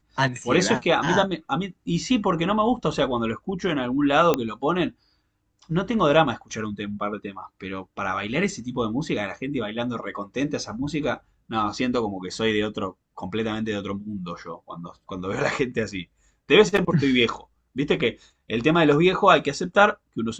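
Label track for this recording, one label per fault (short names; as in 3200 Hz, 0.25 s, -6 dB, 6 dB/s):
4.340000	4.340000	pop -7 dBFS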